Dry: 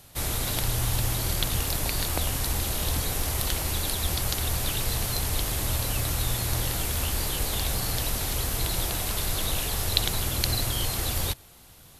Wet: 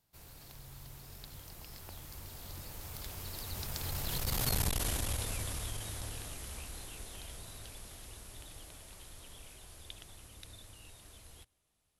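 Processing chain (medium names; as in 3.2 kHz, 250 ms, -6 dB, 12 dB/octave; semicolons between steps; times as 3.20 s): Doppler pass-by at 4.59 s, 45 m/s, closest 12 m; transformer saturation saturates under 290 Hz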